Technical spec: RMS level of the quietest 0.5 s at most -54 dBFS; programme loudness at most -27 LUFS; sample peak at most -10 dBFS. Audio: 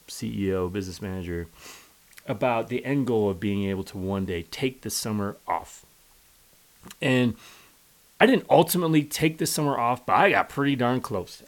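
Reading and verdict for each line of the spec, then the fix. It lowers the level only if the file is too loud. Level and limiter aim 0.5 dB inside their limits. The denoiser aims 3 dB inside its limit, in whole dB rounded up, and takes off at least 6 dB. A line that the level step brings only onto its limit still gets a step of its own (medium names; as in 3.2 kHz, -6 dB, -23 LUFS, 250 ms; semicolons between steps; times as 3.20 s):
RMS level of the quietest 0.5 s -58 dBFS: pass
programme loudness -25.0 LUFS: fail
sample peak -3.0 dBFS: fail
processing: trim -2.5 dB; peak limiter -10.5 dBFS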